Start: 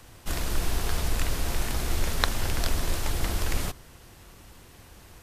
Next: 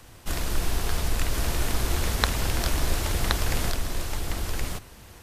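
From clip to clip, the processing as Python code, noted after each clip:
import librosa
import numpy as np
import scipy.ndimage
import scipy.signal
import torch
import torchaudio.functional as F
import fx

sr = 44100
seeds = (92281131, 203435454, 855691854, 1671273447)

y = x + 10.0 ** (-3.0 / 20.0) * np.pad(x, (int(1072 * sr / 1000.0), 0))[:len(x)]
y = y * 10.0 ** (1.0 / 20.0)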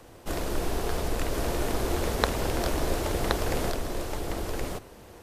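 y = fx.peak_eq(x, sr, hz=460.0, db=12.0, octaves=2.2)
y = y * 10.0 ** (-5.5 / 20.0)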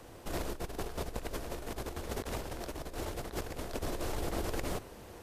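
y = fx.over_compress(x, sr, threshold_db=-31.0, ratio=-0.5)
y = y * 10.0 ** (-5.5 / 20.0)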